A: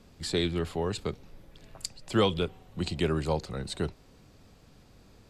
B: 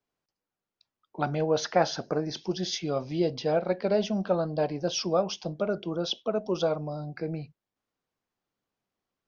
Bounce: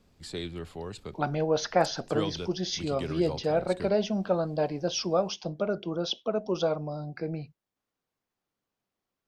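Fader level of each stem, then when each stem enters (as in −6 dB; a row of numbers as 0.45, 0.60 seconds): −8.0, −0.5 decibels; 0.00, 0.00 seconds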